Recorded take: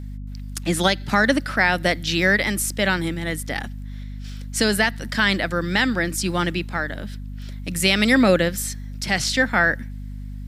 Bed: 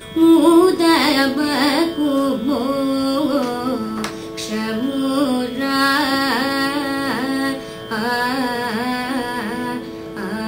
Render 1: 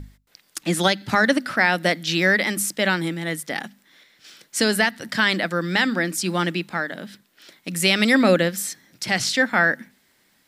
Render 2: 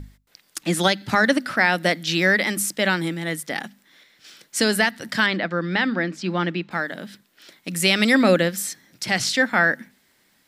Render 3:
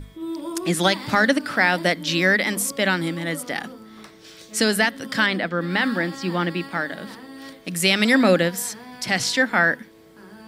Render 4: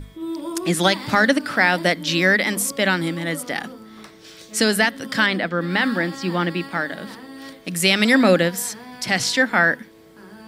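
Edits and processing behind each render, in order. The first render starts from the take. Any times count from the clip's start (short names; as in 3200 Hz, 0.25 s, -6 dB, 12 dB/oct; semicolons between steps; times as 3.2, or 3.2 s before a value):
notches 50/100/150/200/250 Hz
5.26–6.71 air absorption 190 m
add bed -19.5 dB
gain +1.5 dB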